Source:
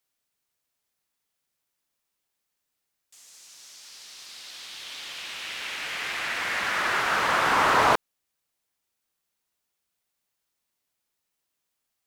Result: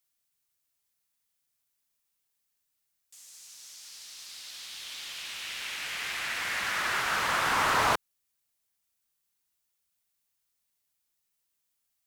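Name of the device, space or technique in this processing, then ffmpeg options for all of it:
smiley-face EQ: -af "lowshelf=f=150:g=3.5,equalizer=f=420:t=o:w=2.5:g=-4.5,highshelf=f=6.1k:g=7,volume=-3.5dB"

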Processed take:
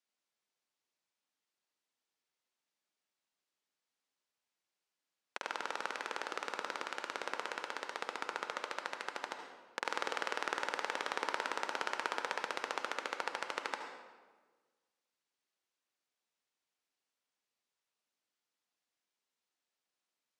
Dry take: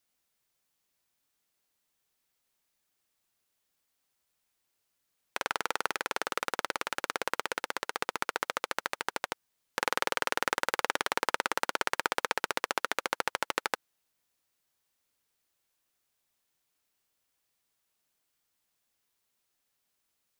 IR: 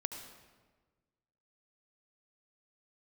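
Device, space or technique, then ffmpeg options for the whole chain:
supermarket ceiling speaker: -filter_complex "[0:a]highpass=220,lowpass=6.8k[a];[1:a]atrim=start_sample=2205[b];[a][b]afir=irnorm=-1:irlink=0,volume=-6.5dB"

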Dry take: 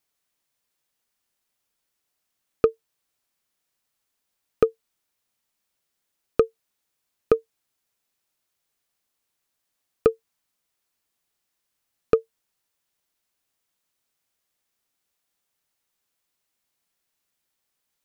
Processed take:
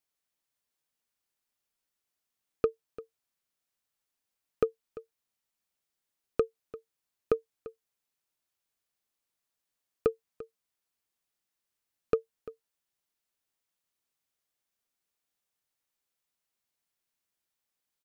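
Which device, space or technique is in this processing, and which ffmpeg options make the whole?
ducked delay: -filter_complex "[0:a]asplit=3[a][b][c];[b]adelay=344,volume=-8dB[d];[c]apad=whole_len=810786[e];[d][e]sidechaincompress=threshold=-24dB:ratio=8:attack=10:release=1300[f];[a][f]amix=inputs=2:normalize=0,volume=-8dB"

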